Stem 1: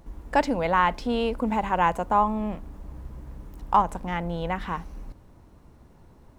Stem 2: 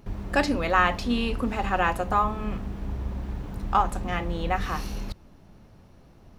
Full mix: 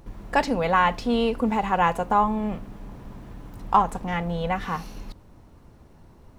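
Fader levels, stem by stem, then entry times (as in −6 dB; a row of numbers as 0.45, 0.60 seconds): +1.0, −6.0 decibels; 0.00, 0.00 seconds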